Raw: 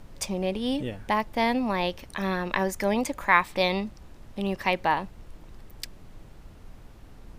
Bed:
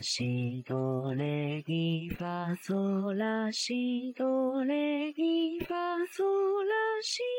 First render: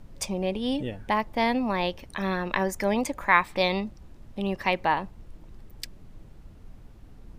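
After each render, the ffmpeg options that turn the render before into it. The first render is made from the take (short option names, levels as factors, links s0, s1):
-af "afftdn=nr=6:nf=-49"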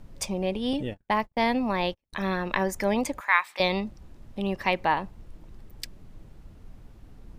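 -filter_complex "[0:a]asettb=1/sr,asplit=3[s0][s1][s2];[s0]atrim=end=0.734[s3];[s1]atrim=start=0.73:end=2.13,asetpts=PTS-STARTPTS,afade=t=in:d=0.004:c=qsin,afade=t=out:st=1.396:d=0.004:c=qsin,agate=range=0.01:threshold=0.0158:ratio=16:release=100:detection=peak[s4];[s2]atrim=start=2.126[s5];[s3][s4]acrossfade=d=0.004:c1=hsin:c2=qsin[s6];[s6][s5]acrossfade=d=0.004:c1=qsin:c2=hsin,asettb=1/sr,asplit=3[s7][s8][s9];[s7]atrim=end=3.204[s10];[s8]atrim=start=3.2:end=3.6,asetpts=PTS-STARTPTS,afade=t=in:d=0.004:c=qsin,afade=t=out:st=0.396:d=0.004:c=qsin,highpass=1100[s11];[s9]atrim=start=3.596[s12];[s10][s11]acrossfade=d=0.004:c1=hsin:c2=qsin[s13];[s13][s12]acrossfade=d=0.004:c1=qsin:c2=hsin"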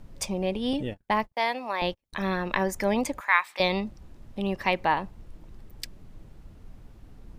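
-filter_complex "[0:a]asettb=1/sr,asplit=3[s0][s1][s2];[s0]atrim=end=1.344[s3];[s1]atrim=start=1.34:end=1.82,asetpts=PTS-STARTPTS,afade=t=in:d=0.004:c=qsin,afade=t=out:st=0.476:d=0.004:c=qsin,highpass=570[s4];[s2]atrim=start=1.816[s5];[s3][s4]acrossfade=d=0.004:c1=hsin:c2=qsin[s6];[s6][s5]acrossfade=d=0.004:c1=qsin:c2=hsin"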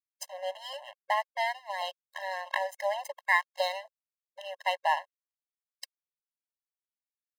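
-af "aeval=exprs='sgn(val(0))*max(abs(val(0))-0.0211,0)':c=same,afftfilt=real='re*eq(mod(floor(b*sr/1024/540),2),1)':imag='im*eq(mod(floor(b*sr/1024/540),2),1)':win_size=1024:overlap=0.75"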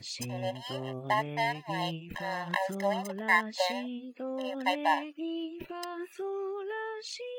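-filter_complex "[1:a]volume=0.447[s0];[0:a][s0]amix=inputs=2:normalize=0"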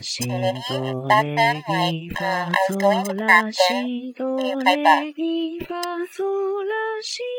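-af "volume=3.98,alimiter=limit=0.891:level=0:latency=1"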